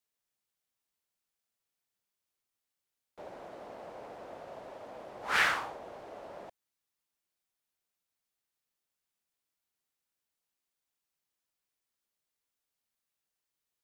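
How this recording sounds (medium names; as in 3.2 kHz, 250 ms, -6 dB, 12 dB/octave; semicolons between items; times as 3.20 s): noise floor -88 dBFS; spectral tilt -1.5 dB/octave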